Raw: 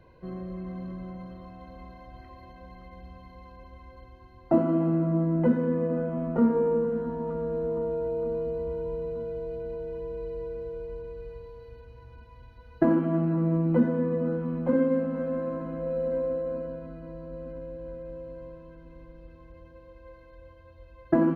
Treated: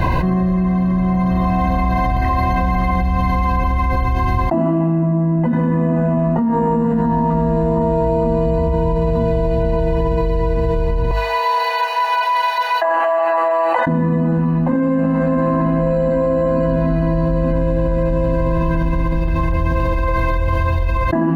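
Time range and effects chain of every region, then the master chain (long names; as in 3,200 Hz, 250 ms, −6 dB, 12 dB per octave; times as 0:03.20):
0:11.11–0:13.87: Butterworth high-pass 580 Hz + downward compressor 2.5 to 1, threshold −53 dBFS
whole clip: mains-hum notches 50/100/150/200/250 Hz; comb filter 1.1 ms, depth 71%; envelope flattener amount 100%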